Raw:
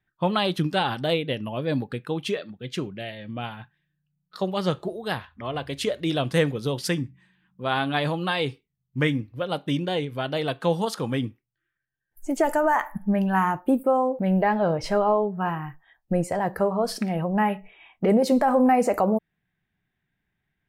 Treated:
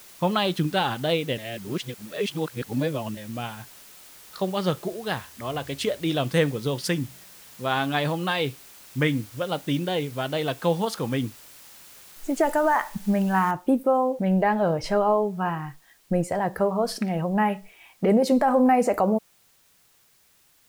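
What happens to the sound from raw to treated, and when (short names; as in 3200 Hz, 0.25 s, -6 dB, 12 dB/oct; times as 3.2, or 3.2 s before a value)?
1.38–3.17 reverse
13.51 noise floor step -48 dB -61 dB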